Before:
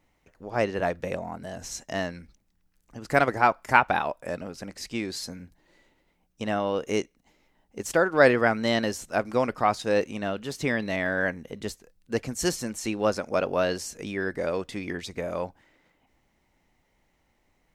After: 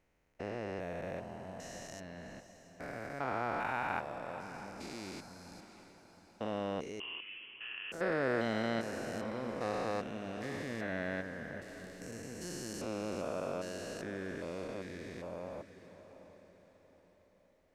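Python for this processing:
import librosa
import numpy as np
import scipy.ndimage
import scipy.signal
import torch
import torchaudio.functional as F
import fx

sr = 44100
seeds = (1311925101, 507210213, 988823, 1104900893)

y = fx.spec_steps(x, sr, hold_ms=400)
y = fx.echo_diffused(y, sr, ms=693, feedback_pct=42, wet_db=-12)
y = fx.freq_invert(y, sr, carrier_hz=3200, at=(7.0, 7.92))
y = y * librosa.db_to_amplitude(-8.0)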